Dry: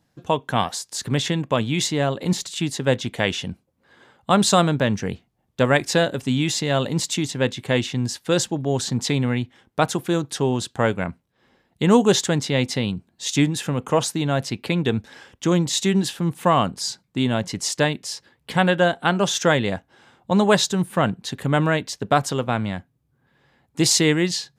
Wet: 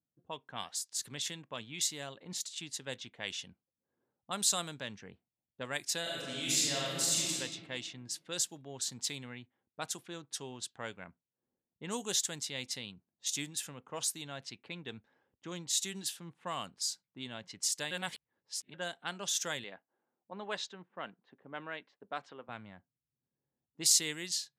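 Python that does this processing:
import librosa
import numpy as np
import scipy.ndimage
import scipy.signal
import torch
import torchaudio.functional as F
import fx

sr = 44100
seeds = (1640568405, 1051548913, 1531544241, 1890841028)

y = fx.reverb_throw(x, sr, start_s=6.01, length_s=1.31, rt60_s=1.9, drr_db=-6.0)
y = fx.bandpass_edges(y, sr, low_hz=250.0, high_hz=2800.0, at=(19.64, 22.49))
y = fx.edit(y, sr, fx.reverse_span(start_s=17.91, length_s=0.83), tone=tone)
y = scipy.signal.lfilter([1.0, -0.9], [1.0], y)
y = fx.env_lowpass(y, sr, base_hz=420.0, full_db=-28.5)
y = fx.low_shelf(y, sr, hz=69.0, db=-9.0)
y = F.gain(torch.from_numpy(y), -5.0).numpy()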